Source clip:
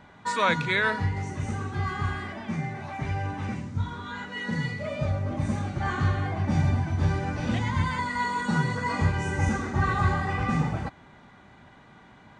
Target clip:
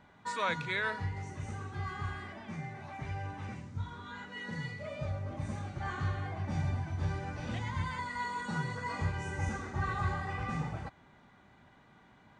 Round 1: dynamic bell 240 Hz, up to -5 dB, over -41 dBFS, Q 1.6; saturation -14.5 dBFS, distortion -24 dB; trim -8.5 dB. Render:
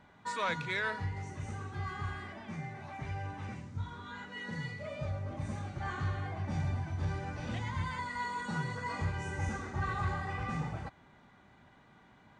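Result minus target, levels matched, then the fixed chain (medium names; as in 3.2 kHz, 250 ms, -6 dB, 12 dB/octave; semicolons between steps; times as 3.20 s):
saturation: distortion +16 dB
dynamic bell 240 Hz, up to -5 dB, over -41 dBFS, Q 1.6; saturation -5.5 dBFS, distortion -40 dB; trim -8.5 dB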